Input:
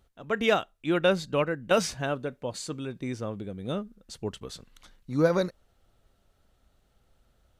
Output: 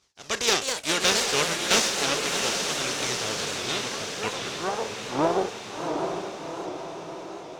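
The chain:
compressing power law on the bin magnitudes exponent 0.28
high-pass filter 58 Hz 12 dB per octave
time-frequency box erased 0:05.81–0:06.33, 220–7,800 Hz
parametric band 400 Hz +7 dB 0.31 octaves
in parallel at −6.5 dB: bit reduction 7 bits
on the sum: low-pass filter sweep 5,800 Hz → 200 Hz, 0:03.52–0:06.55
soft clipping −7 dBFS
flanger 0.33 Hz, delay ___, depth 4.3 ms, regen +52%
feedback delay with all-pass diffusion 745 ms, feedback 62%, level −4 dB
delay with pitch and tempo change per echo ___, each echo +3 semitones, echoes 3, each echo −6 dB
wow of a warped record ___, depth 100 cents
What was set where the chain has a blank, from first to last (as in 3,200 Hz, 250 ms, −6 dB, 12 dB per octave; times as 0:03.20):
0.8 ms, 273 ms, 78 rpm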